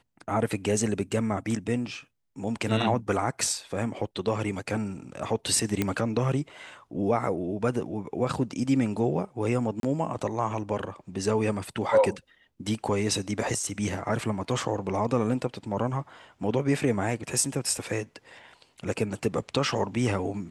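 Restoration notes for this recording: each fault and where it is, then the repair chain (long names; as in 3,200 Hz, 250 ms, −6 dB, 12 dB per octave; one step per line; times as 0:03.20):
0:05.82: click −11 dBFS
0:09.80–0:09.83: drop-out 32 ms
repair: click removal
repair the gap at 0:09.80, 32 ms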